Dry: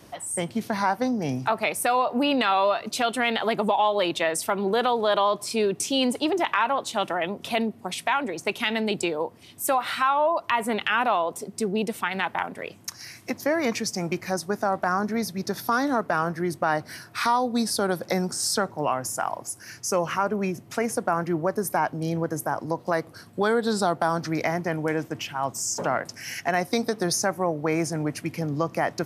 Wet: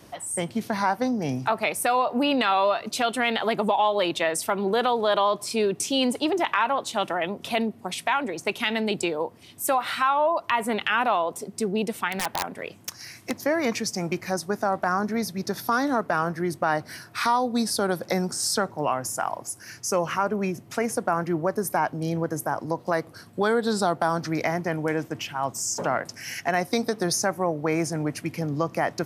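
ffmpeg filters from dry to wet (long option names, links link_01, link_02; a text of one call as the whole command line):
ffmpeg -i in.wav -filter_complex "[0:a]asettb=1/sr,asplit=3[link_01][link_02][link_03];[link_01]atrim=end=12.084[link_04];[link_02]atrim=start=12.08:end=13.41,asetpts=PTS-STARTPTS,afade=type=in:duration=0.004:curve=qsin,afade=type=out:start_time=1.326:duration=0.004:curve=qsin,aeval=exprs='(mod(6.31*val(0)+1,2)-1)/6.31':channel_layout=same[link_05];[link_03]atrim=start=13.406[link_06];[link_04][link_05]acrossfade=duration=0.004:curve1=hsin:curve2=qsin[link_07];[link_07][link_06]acrossfade=duration=0.004:curve1=qsin:curve2=hsin" out.wav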